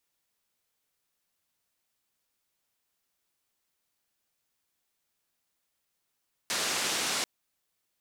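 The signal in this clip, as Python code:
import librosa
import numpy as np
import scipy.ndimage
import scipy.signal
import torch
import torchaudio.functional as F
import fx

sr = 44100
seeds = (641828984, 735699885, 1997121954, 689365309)

y = fx.band_noise(sr, seeds[0], length_s=0.74, low_hz=180.0, high_hz=7100.0, level_db=-30.5)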